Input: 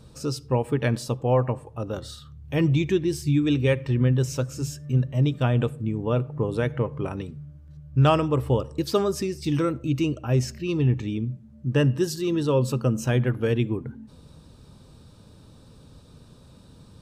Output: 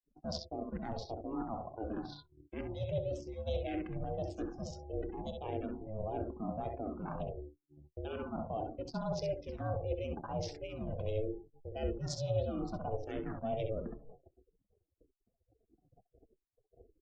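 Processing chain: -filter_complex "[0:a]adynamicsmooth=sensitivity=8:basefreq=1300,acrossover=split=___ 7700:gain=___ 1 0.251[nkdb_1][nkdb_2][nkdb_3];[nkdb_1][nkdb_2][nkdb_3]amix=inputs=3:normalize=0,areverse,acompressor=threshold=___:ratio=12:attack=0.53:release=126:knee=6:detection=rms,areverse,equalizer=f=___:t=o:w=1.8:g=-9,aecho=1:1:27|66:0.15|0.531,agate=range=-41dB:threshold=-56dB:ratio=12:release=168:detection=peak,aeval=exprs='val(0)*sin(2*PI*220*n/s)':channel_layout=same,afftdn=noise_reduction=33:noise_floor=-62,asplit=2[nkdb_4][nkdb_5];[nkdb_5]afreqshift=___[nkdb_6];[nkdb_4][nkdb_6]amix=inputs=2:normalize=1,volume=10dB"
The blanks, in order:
270, 0.141, -35dB, 1700, -1.6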